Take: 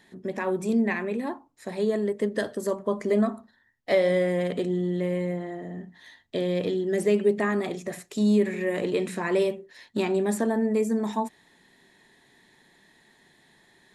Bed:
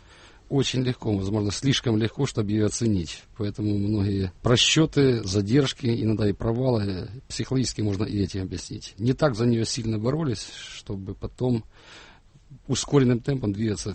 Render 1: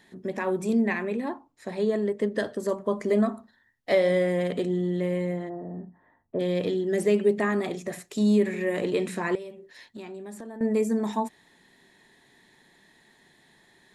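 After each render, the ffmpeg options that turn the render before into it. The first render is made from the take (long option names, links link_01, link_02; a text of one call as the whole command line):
ffmpeg -i in.wav -filter_complex "[0:a]asettb=1/sr,asplit=3[link_01][link_02][link_03];[link_01]atrim=end=1.144[link_04];[link_02]atrim=start=1.14:end=2.69,asetpts=PTS-STARTPTS,afade=type=in:duration=0.004:curve=qsin,afade=type=out:start_time=1.546:duration=0.004:curve=qsin,highshelf=frequency=9100:gain=-10[link_05];[link_03]atrim=start=2.686[link_06];[link_04][link_05]acrossfade=duration=0.004:curve1=hsin:curve2=qsin[link_07];[link_07][link_06]acrossfade=duration=0.004:curve1=qsin:curve2=hsin,asplit=3[link_08][link_09][link_10];[link_08]afade=type=out:start_time=5.48:duration=0.02[link_11];[link_09]lowpass=frequency=1200:width=0.5412,lowpass=frequency=1200:width=1.3066,afade=type=in:start_time=5.48:duration=0.02,afade=type=out:start_time=6.39:duration=0.02[link_12];[link_10]afade=type=in:start_time=6.39:duration=0.02[link_13];[link_11][link_12][link_13]amix=inputs=3:normalize=0,asettb=1/sr,asplit=3[link_14][link_15][link_16];[link_14]atrim=end=9.354[link_17];[link_15]atrim=start=9.35:end=10.61,asetpts=PTS-STARTPTS,afade=type=in:duration=0.004:curve=qsin,afade=type=out:start_time=1.256:duration=0.004:curve=qsin,acompressor=threshold=-42dB:ratio=3:attack=3.2:release=140:knee=1:detection=peak[link_18];[link_16]atrim=start=10.606[link_19];[link_17][link_18]acrossfade=duration=0.004:curve1=hsin:curve2=qsin[link_20];[link_20][link_19]acrossfade=duration=0.004:curve1=qsin:curve2=hsin" out.wav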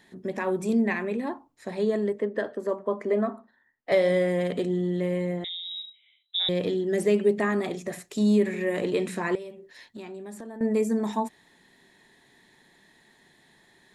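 ffmpeg -i in.wav -filter_complex "[0:a]asettb=1/sr,asplit=3[link_01][link_02][link_03];[link_01]atrim=end=2.194[link_04];[link_02]atrim=start=2.19:end=3.92,asetpts=PTS-STARTPTS,afade=type=in:duration=0.004:curve=qsin,afade=type=out:start_time=1.726:duration=0.004:curve=qsin,acrossover=split=230 2600:gain=0.224 1 0.2[link_05][link_06][link_07];[link_05][link_06][link_07]amix=inputs=3:normalize=0[link_08];[link_03]atrim=start=3.916[link_09];[link_04][link_08]acrossfade=duration=0.004:curve1=hsin:curve2=qsin[link_10];[link_10][link_09]acrossfade=duration=0.004:curve1=qsin:curve2=hsin,asettb=1/sr,asplit=3[link_11][link_12][link_13];[link_11]atrim=end=5.444[link_14];[link_12]atrim=start=5.44:end=6.49,asetpts=PTS-STARTPTS,afade=type=in:duration=0.004:curve=qsin,afade=type=out:start_time=1.046:duration=0.004:curve=qsin,lowpass=frequency=3400:width_type=q:width=0.5098,lowpass=frequency=3400:width_type=q:width=0.6013,lowpass=frequency=3400:width_type=q:width=0.9,lowpass=frequency=3400:width_type=q:width=2.563,afreqshift=-4000[link_15];[link_13]atrim=start=6.486[link_16];[link_14][link_15]acrossfade=duration=0.004:curve1=hsin:curve2=qsin[link_17];[link_17][link_16]acrossfade=duration=0.004:curve1=qsin:curve2=hsin" out.wav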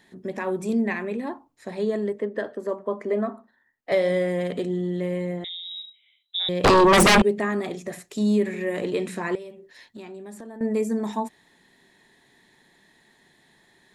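ffmpeg -i in.wav -filter_complex "[0:a]asettb=1/sr,asplit=3[link_01][link_02][link_03];[link_01]atrim=end=6.644[link_04];[link_02]atrim=start=6.64:end=7.22,asetpts=PTS-STARTPTS,afade=type=in:duration=0.004:curve=qsin,afade=type=out:start_time=0.576:duration=0.004:curve=qsin,aeval=exprs='0.266*sin(PI/2*7.08*val(0)/0.266)':channel_layout=same[link_05];[link_03]atrim=start=7.216[link_06];[link_04][link_05]acrossfade=duration=0.004:curve1=hsin:curve2=qsin[link_07];[link_07][link_06]acrossfade=duration=0.004:curve1=qsin:curve2=hsin" out.wav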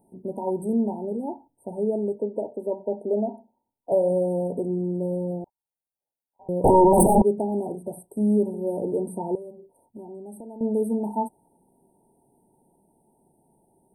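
ffmpeg -i in.wav -af "afftfilt=real='re*(1-between(b*sr/4096,960,8100))':imag='im*(1-between(b*sr/4096,960,8100))':win_size=4096:overlap=0.75,adynamicequalizer=threshold=0.01:dfrequency=1100:dqfactor=2:tfrequency=1100:tqfactor=2:attack=5:release=100:ratio=0.375:range=3:mode=boostabove:tftype=bell" out.wav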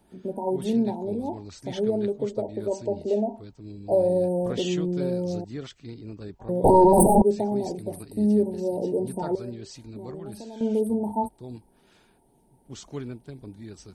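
ffmpeg -i in.wav -i bed.wav -filter_complex "[1:a]volume=-16dB[link_01];[0:a][link_01]amix=inputs=2:normalize=0" out.wav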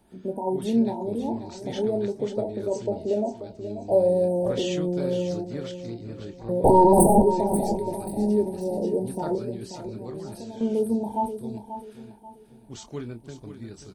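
ffmpeg -i in.wav -filter_complex "[0:a]asplit=2[link_01][link_02];[link_02]adelay=26,volume=-9.5dB[link_03];[link_01][link_03]amix=inputs=2:normalize=0,aecho=1:1:536|1072|1608|2144:0.299|0.104|0.0366|0.0128" out.wav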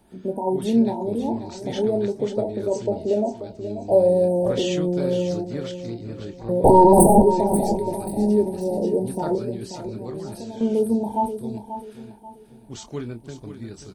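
ffmpeg -i in.wav -af "volume=3.5dB" out.wav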